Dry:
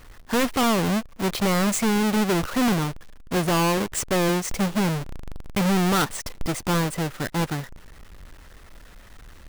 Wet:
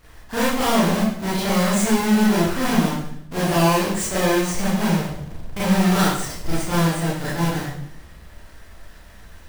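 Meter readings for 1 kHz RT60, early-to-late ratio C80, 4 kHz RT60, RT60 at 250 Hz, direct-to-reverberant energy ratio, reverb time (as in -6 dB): 0.65 s, 4.0 dB, 0.60 s, 0.95 s, -10.0 dB, 0.70 s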